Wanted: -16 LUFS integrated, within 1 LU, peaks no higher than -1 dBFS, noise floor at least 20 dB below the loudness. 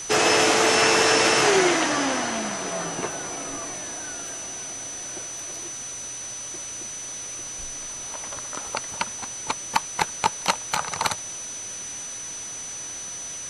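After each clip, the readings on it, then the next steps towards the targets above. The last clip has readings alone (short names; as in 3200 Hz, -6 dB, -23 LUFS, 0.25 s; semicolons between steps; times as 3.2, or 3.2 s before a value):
steady tone 6000 Hz; tone level -33 dBFS; noise floor -35 dBFS; noise floor target -45 dBFS; loudness -24.5 LUFS; peak -4.5 dBFS; loudness target -16.0 LUFS
-> notch 6000 Hz, Q 30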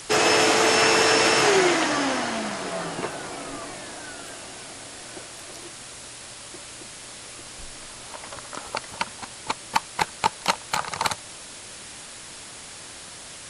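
steady tone none; noise floor -41 dBFS; noise floor target -43 dBFS
-> noise print and reduce 6 dB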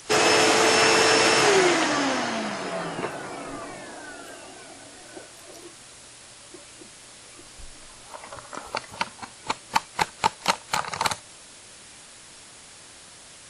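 noise floor -47 dBFS; loudness -22.5 LUFS; peak -4.5 dBFS; loudness target -16.0 LUFS
-> gain +6.5 dB; limiter -1 dBFS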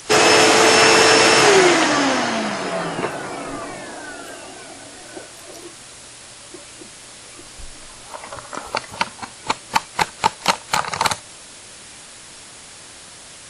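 loudness -16.0 LUFS; peak -1.0 dBFS; noise floor -41 dBFS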